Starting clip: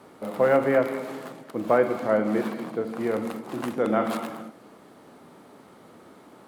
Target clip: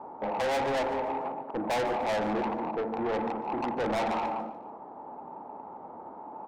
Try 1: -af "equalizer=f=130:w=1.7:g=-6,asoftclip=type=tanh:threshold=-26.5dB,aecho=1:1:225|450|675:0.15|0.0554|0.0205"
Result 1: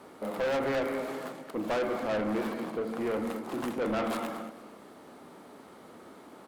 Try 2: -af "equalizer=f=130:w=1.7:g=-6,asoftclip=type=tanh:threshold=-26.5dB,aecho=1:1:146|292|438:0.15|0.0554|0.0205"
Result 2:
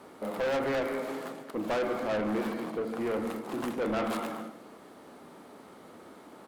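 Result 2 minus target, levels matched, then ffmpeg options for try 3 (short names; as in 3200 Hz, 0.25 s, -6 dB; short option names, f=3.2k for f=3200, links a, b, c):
1000 Hz band -5.5 dB
-af "lowpass=f=870:t=q:w=7.9,equalizer=f=130:w=1.7:g=-6,asoftclip=type=tanh:threshold=-26.5dB,aecho=1:1:146|292|438:0.15|0.0554|0.0205"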